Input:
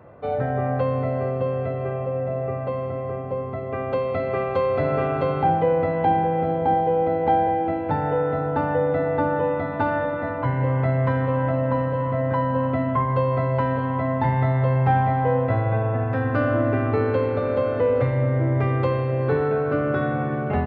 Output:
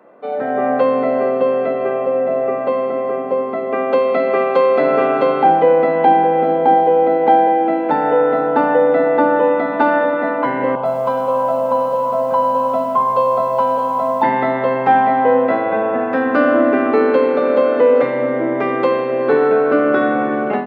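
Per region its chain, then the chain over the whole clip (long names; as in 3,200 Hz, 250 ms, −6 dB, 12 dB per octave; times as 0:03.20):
0:10.75–0:14.23: phaser with its sweep stopped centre 780 Hz, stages 4 + feedback echo at a low word length 101 ms, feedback 55%, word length 8 bits, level −13 dB
whole clip: Butterworth high-pass 210 Hz 36 dB per octave; automatic gain control gain up to 9 dB; level +1 dB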